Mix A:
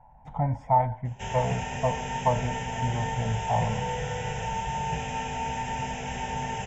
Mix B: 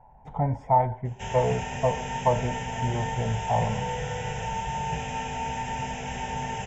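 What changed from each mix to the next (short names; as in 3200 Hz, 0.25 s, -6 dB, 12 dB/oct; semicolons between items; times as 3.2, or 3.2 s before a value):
speech: add bell 400 Hz +14.5 dB 0.47 oct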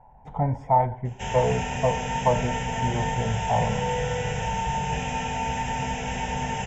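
reverb: on, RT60 0.50 s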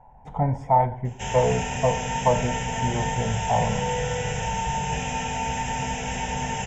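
speech: send +6.5 dB; master: add high shelf 7100 Hz +10.5 dB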